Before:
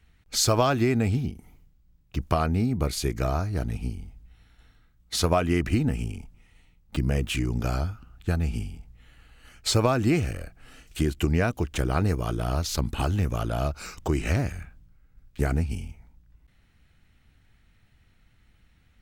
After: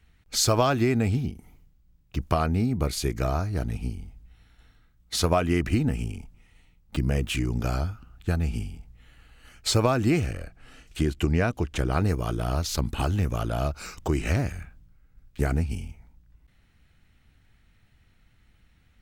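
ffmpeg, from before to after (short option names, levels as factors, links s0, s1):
-filter_complex "[0:a]asettb=1/sr,asplit=3[s0][s1][s2];[s0]atrim=end=10.264[s3];[s1]atrim=start=10.26:end=11.92,asetpts=PTS-STARTPTS,afade=t=in:d=0.004:c=qsin,afade=t=out:st=1.656:d=0.004:c=qsin,highshelf=f=11000:g=-10[s4];[s2]atrim=start=11.916[s5];[s3][s4]acrossfade=d=0.004:c1=hsin:c2=qsin[s6];[s6][s5]acrossfade=d=0.004:c1=qsin:c2=hsin"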